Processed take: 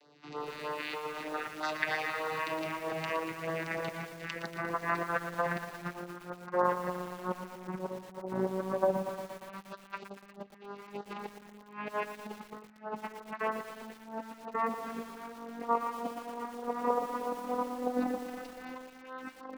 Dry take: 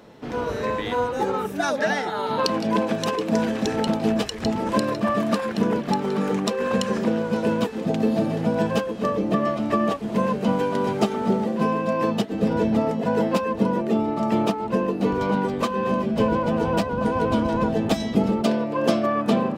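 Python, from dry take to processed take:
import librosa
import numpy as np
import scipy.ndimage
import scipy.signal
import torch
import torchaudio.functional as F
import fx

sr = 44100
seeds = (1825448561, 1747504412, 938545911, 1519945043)

p1 = fx.vocoder_glide(x, sr, note=50, semitones=10)
p2 = 10.0 ** (-17.5 / 20.0) * (np.abs((p1 / 10.0 ** (-17.5 / 20.0) + 3.0) % 4.0 - 2.0) - 1.0)
p3 = p1 + (p2 * 10.0 ** (-3.0 / 20.0))
p4 = fx.echo_feedback(p3, sr, ms=109, feedback_pct=27, wet_db=-17.5)
p5 = fx.cheby_harmonics(p4, sr, harmonics=(6,), levels_db=(-18,), full_scale_db=-7.0)
p6 = fx.peak_eq(p5, sr, hz=3300.0, db=-10.0, octaves=0.26)
p7 = fx.over_compress(p6, sr, threshold_db=-25.0, ratio=-0.5)
p8 = fx.filter_lfo_notch(p7, sr, shape='sine', hz=3.2, low_hz=460.0, high_hz=2500.0, q=1.1)
p9 = fx.low_shelf(p8, sr, hz=150.0, db=2.5)
p10 = fx.filter_lfo_bandpass(p9, sr, shape='saw_down', hz=0.11, low_hz=810.0, high_hz=3800.0, q=1.5)
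p11 = fx.echo_crushed(p10, sr, ms=117, feedback_pct=80, bits=8, wet_db=-9.5)
y = p11 * 10.0 ** (3.0 / 20.0)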